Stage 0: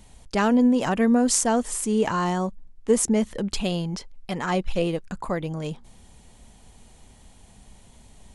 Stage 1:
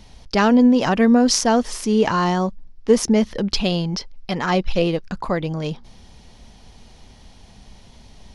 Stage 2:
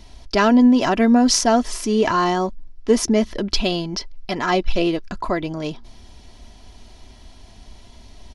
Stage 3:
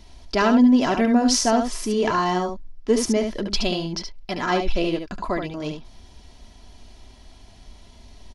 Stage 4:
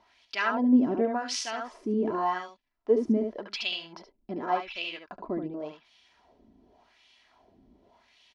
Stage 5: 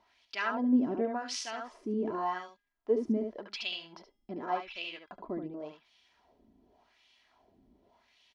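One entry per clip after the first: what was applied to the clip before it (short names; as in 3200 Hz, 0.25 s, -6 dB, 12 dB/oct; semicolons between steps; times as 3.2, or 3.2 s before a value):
resonant high shelf 6500 Hz -7 dB, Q 3; gain +5 dB
comb 3 ms, depth 52%
echo 72 ms -6.5 dB; gain -3.5 dB
wah 0.88 Hz 260–2900 Hz, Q 2.1
resonator 410 Hz, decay 0.76 s, mix 30%; gain -2 dB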